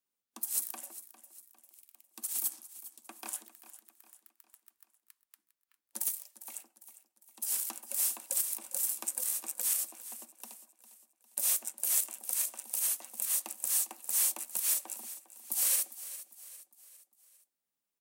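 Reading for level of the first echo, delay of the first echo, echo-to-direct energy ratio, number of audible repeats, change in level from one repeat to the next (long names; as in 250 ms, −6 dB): −15.0 dB, 403 ms, −14.0 dB, 3, −7.0 dB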